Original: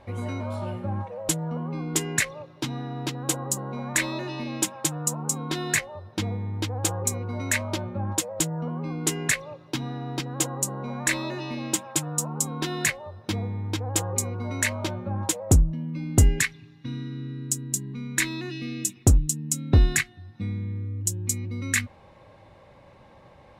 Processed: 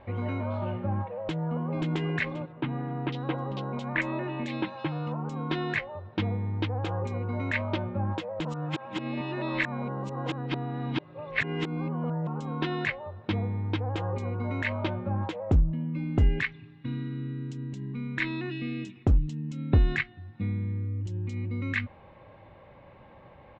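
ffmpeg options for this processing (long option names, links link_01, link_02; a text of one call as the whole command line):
ffmpeg -i in.wav -filter_complex "[0:a]asplit=2[link_01][link_02];[link_02]afade=type=in:start_time=1.15:duration=0.01,afade=type=out:start_time=1.92:duration=0.01,aecho=0:1:530|1060|1590:0.530884|0.132721|0.0331803[link_03];[link_01][link_03]amix=inputs=2:normalize=0,asettb=1/sr,asplit=3[link_04][link_05][link_06];[link_04]atrim=end=2.524[link_07];[link_05]atrim=start=2.52:end=5.12,asetpts=PTS-STARTPTS,afade=type=in:duration=0.004:curve=qsin,afade=type=out:start_time=2.596:duration=0.004:curve=qsin,acrossover=split=3100[link_08][link_09];[link_09]adelay=500[link_10];[link_08][link_10]amix=inputs=2:normalize=0,atrim=end_sample=114660[link_11];[link_06]atrim=start=5.116[link_12];[link_07][link_11]acrossfade=duration=0.004:curve1=hsin:curve2=qsin[link_13];[link_13][link_12]acrossfade=duration=0.004:curve1=qsin:curve2=hsin,asplit=3[link_14][link_15][link_16];[link_14]atrim=end=8.452[link_17];[link_15]atrim=start=8.448:end=12.272,asetpts=PTS-STARTPTS,areverse[link_18];[link_16]atrim=start=12.268[link_19];[link_17][link_18]acrossfade=duration=0.004:curve1=hsin:curve2=hsin[link_20];[link_20][link_19]acrossfade=duration=0.004:curve1=hsin:curve2=hsin,alimiter=limit=-14dB:level=0:latency=1:release=85,lowpass=frequency=3200:width=0.5412,lowpass=frequency=3200:width=1.3066" out.wav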